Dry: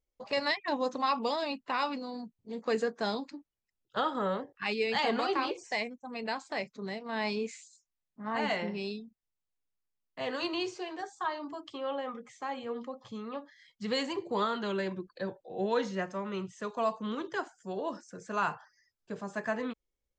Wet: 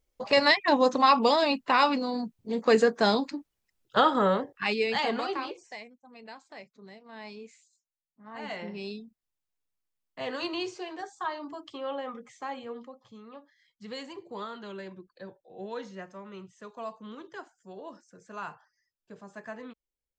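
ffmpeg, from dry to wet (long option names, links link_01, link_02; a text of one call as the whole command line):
ffmpeg -i in.wav -af "volume=20.5dB,afade=type=out:start_time=4.01:duration=0.97:silence=0.421697,afade=type=out:start_time=4.98:duration=0.83:silence=0.237137,afade=type=in:start_time=8.31:duration=0.7:silence=0.266073,afade=type=out:start_time=12.47:duration=0.53:silence=0.375837" out.wav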